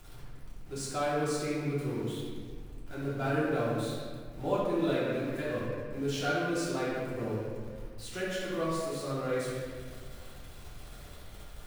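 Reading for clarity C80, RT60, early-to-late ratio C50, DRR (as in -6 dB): 0.5 dB, 1.9 s, -2.5 dB, -10.0 dB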